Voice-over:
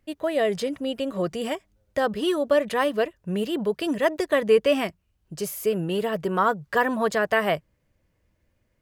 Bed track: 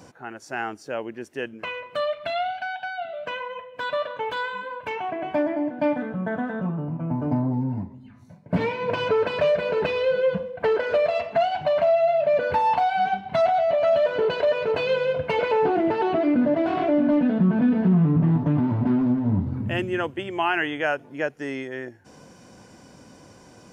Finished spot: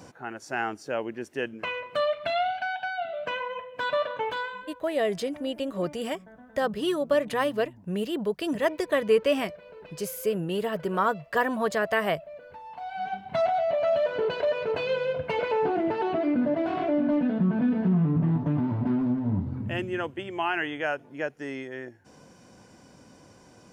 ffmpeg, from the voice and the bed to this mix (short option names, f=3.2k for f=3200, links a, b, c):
-filter_complex "[0:a]adelay=4600,volume=-3dB[a];[1:a]volume=18.5dB,afade=t=out:st=4.16:d=0.68:silence=0.0707946,afade=t=in:st=12.72:d=0.65:silence=0.11885[b];[a][b]amix=inputs=2:normalize=0"